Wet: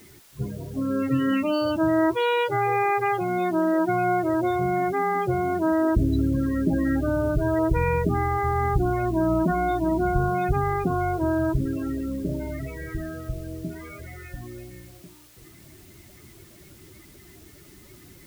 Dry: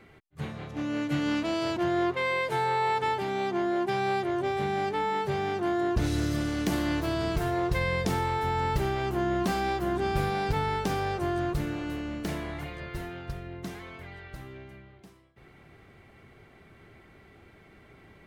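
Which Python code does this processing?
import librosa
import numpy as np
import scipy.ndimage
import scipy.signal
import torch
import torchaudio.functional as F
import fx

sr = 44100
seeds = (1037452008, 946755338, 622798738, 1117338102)

p1 = fx.notch(x, sr, hz=840.0, q=12.0)
p2 = fx.pitch_keep_formants(p1, sr, semitones=-1.5)
p3 = fx.spec_topn(p2, sr, count=16)
p4 = fx.quant_dither(p3, sr, seeds[0], bits=8, dither='triangular')
p5 = p3 + (p4 * 10.0 ** (-9.0 / 20.0))
y = p5 * 10.0 ** (3.5 / 20.0)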